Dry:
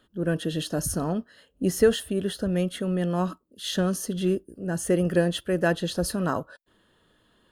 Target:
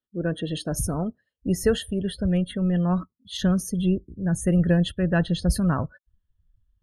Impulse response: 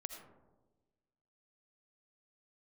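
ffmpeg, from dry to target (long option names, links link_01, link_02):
-af "atempo=1.1,asubboost=boost=7:cutoff=140,afftdn=noise_reduction=30:noise_floor=-40"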